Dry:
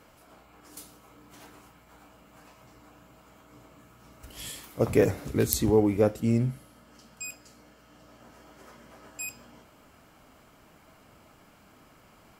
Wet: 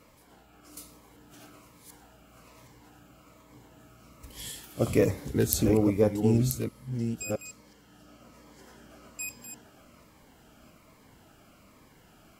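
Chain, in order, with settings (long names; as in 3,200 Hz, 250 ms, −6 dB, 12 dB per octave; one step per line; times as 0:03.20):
delay that plays each chunk backwards 669 ms, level −6.5 dB
phaser whose notches keep moving one way falling 1.2 Hz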